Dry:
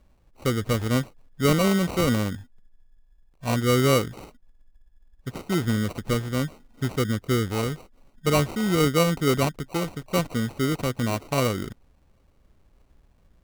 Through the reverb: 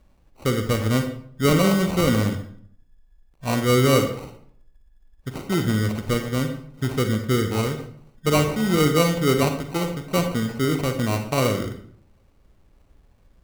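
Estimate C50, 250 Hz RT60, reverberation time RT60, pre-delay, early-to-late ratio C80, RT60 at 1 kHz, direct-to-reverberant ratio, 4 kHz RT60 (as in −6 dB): 7.5 dB, 0.70 s, 0.60 s, 37 ms, 11.0 dB, 0.55 s, 6.0 dB, 0.45 s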